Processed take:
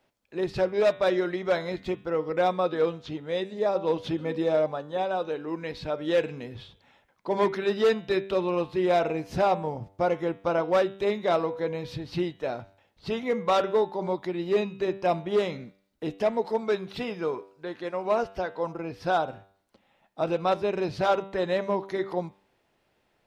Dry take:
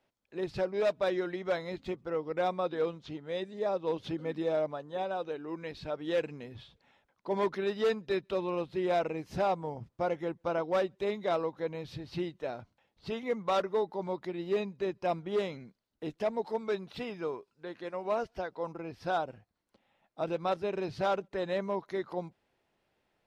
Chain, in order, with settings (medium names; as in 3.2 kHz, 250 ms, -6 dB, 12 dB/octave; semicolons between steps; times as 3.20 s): de-hum 97.36 Hz, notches 40; trim +6.5 dB